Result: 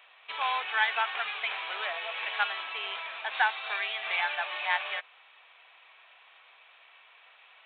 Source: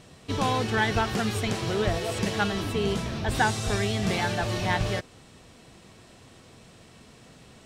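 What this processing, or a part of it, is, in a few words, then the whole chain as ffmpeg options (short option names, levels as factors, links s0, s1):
musical greeting card: -af "aresample=8000,aresample=44100,highpass=f=830:w=0.5412,highpass=f=830:w=1.3066,equalizer=f=2400:t=o:w=0.24:g=7.5"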